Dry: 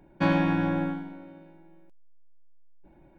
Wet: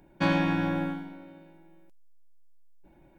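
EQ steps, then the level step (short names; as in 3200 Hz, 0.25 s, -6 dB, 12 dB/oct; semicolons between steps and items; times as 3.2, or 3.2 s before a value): high shelf 3100 Hz +9.5 dB; -2.0 dB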